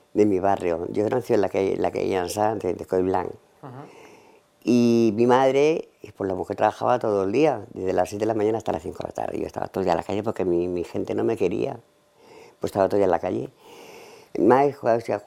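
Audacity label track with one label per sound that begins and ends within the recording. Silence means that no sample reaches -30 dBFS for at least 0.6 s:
4.660000	11.750000	sound
12.640000	13.450000	sound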